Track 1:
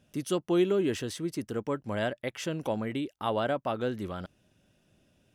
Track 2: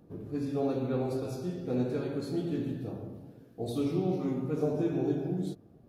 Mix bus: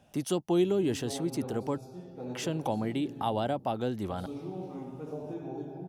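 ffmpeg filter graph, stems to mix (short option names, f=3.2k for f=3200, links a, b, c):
-filter_complex "[0:a]volume=1.5dB,asplit=3[a][b][c];[a]atrim=end=1.78,asetpts=PTS-STARTPTS,afade=t=out:st=1.776:d=0.004:c=hsin[d];[b]atrim=start=1.78:end=2.31,asetpts=PTS-STARTPTS,volume=0[e];[c]atrim=start=2.31,asetpts=PTS-STARTPTS,afade=t=in:d=0.004:c=hsin[f];[d][e][f]concat=n=3:v=0:a=1[g];[1:a]bandreject=f=730:w=12,adelay=500,volume=-10dB[h];[g][h]amix=inputs=2:normalize=0,acrossover=split=380|3000[i][j][k];[j]acompressor=threshold=-44dB:ratio=3[l];[i][l][k]amix=inputs=3:normalize=0,equalizer=f=800:t=o:w=0.68:g=13.5"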